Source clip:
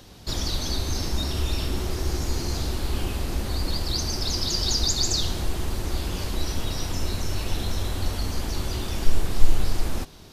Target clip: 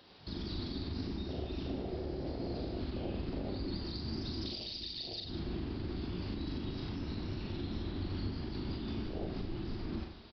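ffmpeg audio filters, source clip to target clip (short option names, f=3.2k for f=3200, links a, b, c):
-filter_complex "[0:a]afwtdn=0.0501,highpass=f=330:p=1,acompressor=threshold=-40dB:ratio=6,alimiter=level_in=15.5dB:limit=-24dB:level=0:latency=1:release=135,volume=-15.5dB,asplit=2[a][b];[b]aecho=0:1:40|90|152.5|230.6|328.3:0.631|0.398|0.251|0.158|0.1[c];[a][c]amix=inputs=2:normalize=0,aresample=11025,aresample=44100,volume=8dB"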